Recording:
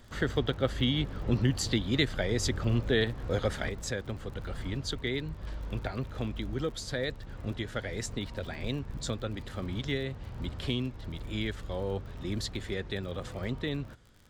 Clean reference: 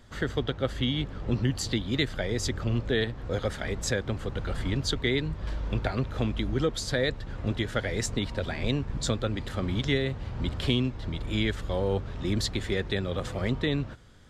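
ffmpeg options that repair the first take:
-af "adeclick=t=4,asetnsamples=n=441:p=0,asendcmd='3.69 volume volume 6dB',volume=1"

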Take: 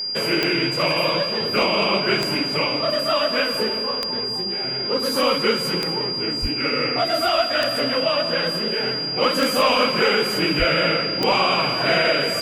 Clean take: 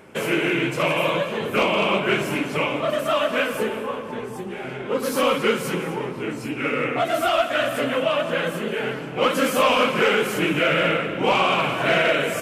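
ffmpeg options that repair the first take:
-filter_complex "[0:a]adeclick=t=4,bandreject=f=4800:w=30,asplit=3[s0][s1][s2];[s0]afade=t=out:st=6.41:d=0.02[s3];[s1]highpass=f=140:w=0.5412,highpass=f=140:w=1.3066,afade=t=in:st=6.41:d=0.02,afade=t=out:st=6.53:d=0.02[s4];[s2]afade=t=in:st=6.53:d=0.02[s5];[s3][s4][s5]amix=inputs=3:normalize=0,asplit=3[s6][s7][s8];[s6]afade=t=out:st=10.58:d=0.02[s9];[s7]highpass=f=140:w=0.5412,highpass=f=140:w=1.3066,afade=t=in:st=10.58:d=0.02,afade=t=out:st=10.7:d=0.02[s10];[s8]afade=t=in:st=10.7:d=0.02[s11];[s9][s10][s11]amix=inputs=3:normalize=0"

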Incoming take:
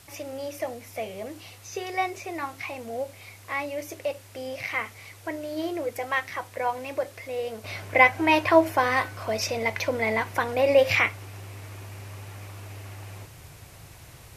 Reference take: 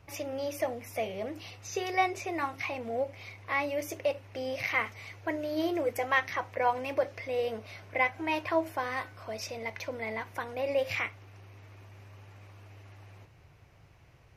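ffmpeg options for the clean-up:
-af "afwtdn=0.0025,asetnsamples=n=441:p=0,asendcmd='7.64 volume volume -10.5dB',volume=1"

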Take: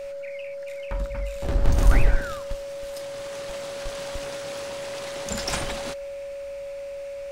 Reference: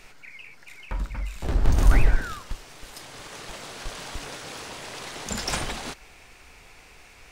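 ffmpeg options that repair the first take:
-af "bandreject=f=560:w=30"

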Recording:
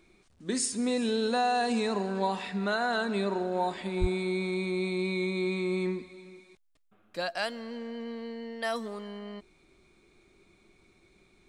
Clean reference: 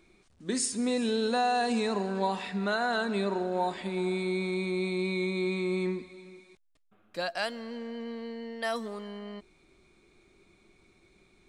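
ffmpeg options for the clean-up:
-filter_complex "[0:a]asplit=3[s0][s1][s2];[s0]afade=t=out:st=4:d=0.02[s3];[s1]highpass=f=140:w=0.5412,highpass=f=140:w=1.3066,afade=t=in:st=4:d=0.02,afade=t=out:st=4.12:d=0.02[s4];[s2]afade=t=in:st=4.12:d=0.02[s5];[s3][s4][s5]amix=inputs=3:normalize=0"

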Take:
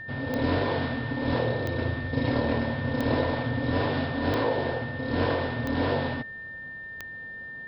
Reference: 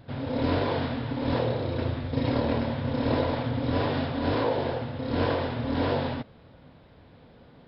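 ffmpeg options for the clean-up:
-af "adeclick=t=4,bandreject=f=1800:w=30"

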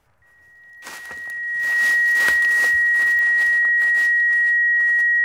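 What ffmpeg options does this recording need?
-af "adeclick=t=4,bandreject=f=1900:w=30"

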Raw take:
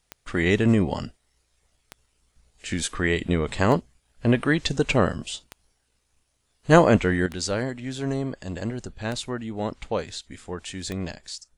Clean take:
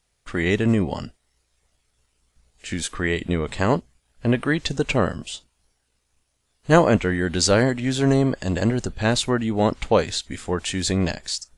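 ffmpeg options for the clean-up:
-af "adeclick=t=4,asetnsamples=n=441:p=0,asendcmd='7.26 volume volume 9dB',volume=1"

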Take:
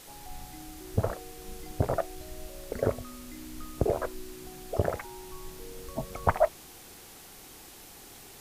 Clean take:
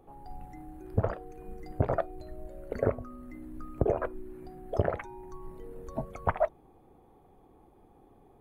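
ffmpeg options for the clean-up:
-af "afwtdn=0.0035,asetnsamples=n=441:p=0,asendcmd='6.1 volume volume -3.5dB',volume=1"

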